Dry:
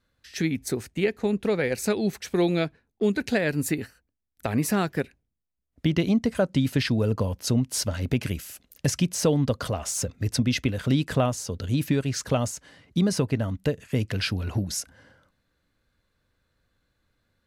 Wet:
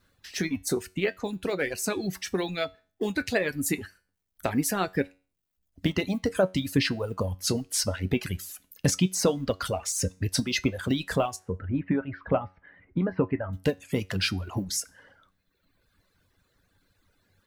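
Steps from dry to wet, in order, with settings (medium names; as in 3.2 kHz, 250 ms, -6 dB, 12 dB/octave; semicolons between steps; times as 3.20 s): companding laws mixed up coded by mu; harmonic-percussive split percussive +8 dB; 11.36–13.53 s: inverse Chebyshev low-pass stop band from 6.4 kHz, stop band 60 dB; feedback comb 93 Hz, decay 0.37 s, harmonics all, mix 70%; reverb removal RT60 1.2 s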